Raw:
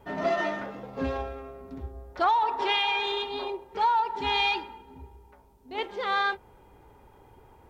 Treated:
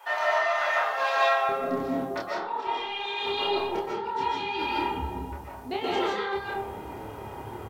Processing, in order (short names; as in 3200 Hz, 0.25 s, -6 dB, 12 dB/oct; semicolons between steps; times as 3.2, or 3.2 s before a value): HPF 790 Hz 24 dB/oct, from 1.49 s 160 Hz, from 2.67 s 64 Hz; negative-ratio compressor -38 dBFS, ratio -1; flange 1.1 Hz, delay 7.1 ms, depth 4.3 ms, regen +68%; doubler 28 ms -2.5 dB; digital reverb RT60 0.66 s, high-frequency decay 0.55×, pre-delay 0.105 s, DRR -4 dB; gain +7 dB